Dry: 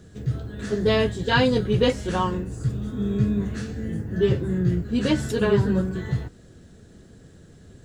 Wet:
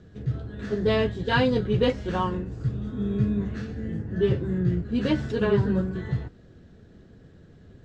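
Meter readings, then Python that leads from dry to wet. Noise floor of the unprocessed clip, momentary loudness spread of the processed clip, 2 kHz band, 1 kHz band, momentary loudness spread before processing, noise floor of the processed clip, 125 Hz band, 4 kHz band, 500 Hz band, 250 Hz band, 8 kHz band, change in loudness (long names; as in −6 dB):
−50 dBFS, 9 LU, −3.0 dB, −2.5 dB, 10 LU, −52 dBFS, −2.0 dB, −5.0 dB, −2.5 dB, −2.0 dB, below −10 dB, −2.5 dB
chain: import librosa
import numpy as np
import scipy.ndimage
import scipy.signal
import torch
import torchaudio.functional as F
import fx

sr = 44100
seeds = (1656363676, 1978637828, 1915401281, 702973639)

y = scipy.signal.medfilt(x, 5)
y = fx.air_absorb(y, sr, metres=97.0)
y = y * librosa.db_to_amplitude(-2.0)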